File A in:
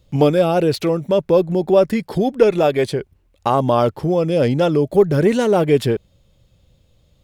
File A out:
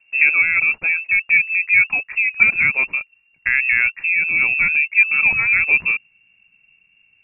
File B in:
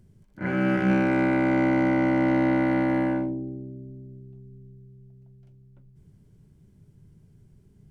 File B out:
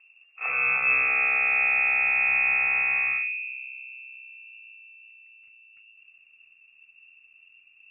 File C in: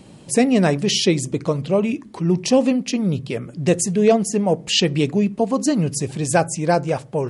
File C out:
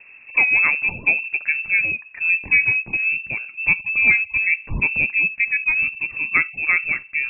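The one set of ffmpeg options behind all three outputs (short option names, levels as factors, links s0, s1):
-af "lowpass=f=2400:t=q:w=0.5098,lowpass=f=2400:t=q:w=0.6013,lowpass=f=2400:t=q:w=0.9,lowpass=f=2400:t=q:w=2.563,afreqshift=-2800,asubboost=boost=5.5:cutoff=230,volume=0.891"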